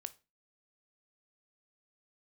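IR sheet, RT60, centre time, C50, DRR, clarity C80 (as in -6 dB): 0.30 s, 2 ms, 19.0 dB, 12.5 dB, 26.5 dB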